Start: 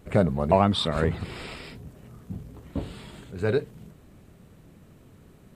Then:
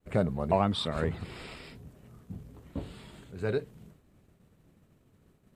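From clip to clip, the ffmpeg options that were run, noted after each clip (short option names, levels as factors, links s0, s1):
-af "agate=range=0.0224:threshold=0.00501:ratio=3:detection=peak,volume=0.501"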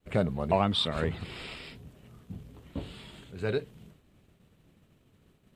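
-af "equalizer=f=3100:t=o:w=0.99:g=7"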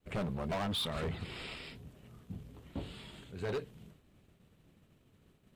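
-af "asoftclip=type=hard:threshold=0.0335,volume=0.75"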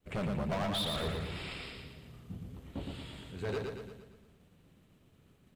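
-af "aecho=1:1:115|230|345|460|575|690|805:0.631|0.322|0.164|0.0837|0.0427|0.0218|0.0111"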